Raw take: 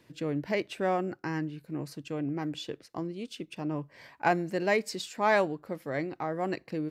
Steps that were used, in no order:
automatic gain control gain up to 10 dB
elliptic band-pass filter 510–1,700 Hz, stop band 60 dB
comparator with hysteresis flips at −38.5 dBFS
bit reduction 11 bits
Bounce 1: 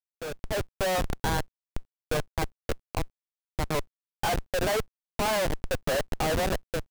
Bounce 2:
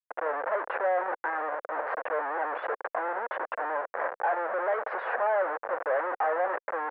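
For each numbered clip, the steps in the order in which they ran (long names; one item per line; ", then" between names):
elliptic band-pass filter, then comparator with hysteresis, then automatic gain control, then bit reduction
automatic gain control, then bit reduction, then comparator with hysteresis, then elliptic band-pass filter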